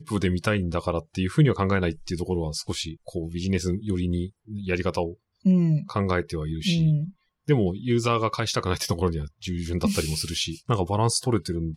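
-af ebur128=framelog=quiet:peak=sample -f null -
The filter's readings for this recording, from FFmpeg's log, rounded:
Integrated loudness:
  I:         -25.7 LUFS
  Threshold: -35.8 LUFS
Loudness range:
  LRA:         3.7 LU
  Threshold: -45.9 LUFS
  LRA low:   -28.4 LUFS
  LRA high:  -24.6 LUFS
Sample peak:
  Peak:       -9.7 dBFS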